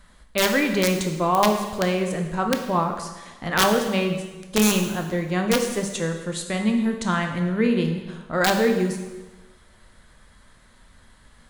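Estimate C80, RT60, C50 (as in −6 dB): 8.5 dB, 1.2 s, 6.5 dB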